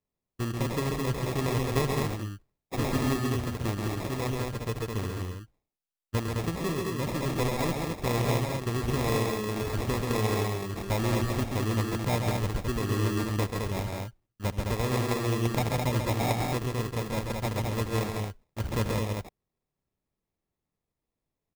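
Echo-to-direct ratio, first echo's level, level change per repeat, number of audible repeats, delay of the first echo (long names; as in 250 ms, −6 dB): −1.0 dB, −18.5 dB, repeats not evenly spaced, 3, 76 ms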